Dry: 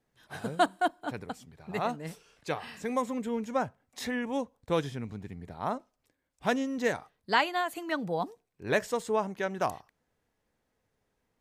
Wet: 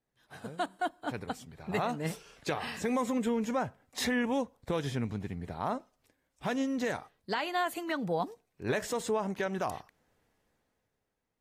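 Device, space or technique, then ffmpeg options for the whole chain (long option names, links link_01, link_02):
low-bitrate web radio: -af "dynaudnorm=framelen=110:gausssize=17:maxgain=15dB,alimiter=limit=-13dB:level=0:latency=1:release=102,volume=-8.5dB" -ar 44100 -c:a aac -b:a 48k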